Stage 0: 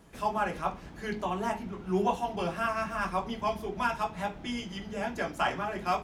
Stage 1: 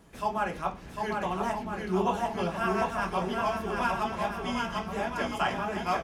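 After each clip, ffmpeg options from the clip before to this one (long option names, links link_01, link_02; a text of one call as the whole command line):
ffmpeg -i in.wav -af "aecho=1:1:750|1312|1734|2051|2288:0.631|0.398|0.251|0.158|0.1" out.wav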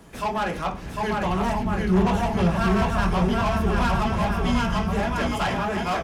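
ffmpeg -i in.wav -filter_complex "[0:a]acrossover=split=150[link_01][link_02];[link_01]dynaudnorm=framelen=300:gausssize=9:maxgain=12dB[link_03];[link_02]asoftclip=type=tanh:threshold=-29.5dB[link_04];[link_03][link_04]amix=inputs=2:normalize=0,volume=8.5dB" out.wav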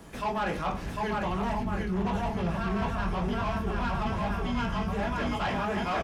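ffmpeg -i in.wav -filter_complex "[0:a]acrossover=split=4900[link_01][link_02];[link_02]acompressor=threshold=-50dB:ratio=4:attack=1:release=60[link_03];[link_01][link_03]amix=inputs=2:normalize=0,asplit=2[link_04][link_05];[link_05]adelay=20,volume=-11dB[link_06];[link_04][link_06]amix=inputs=2:normalize=0,areverse,acompressor=threshold=-27dB:ratio=5,areverse" out.wav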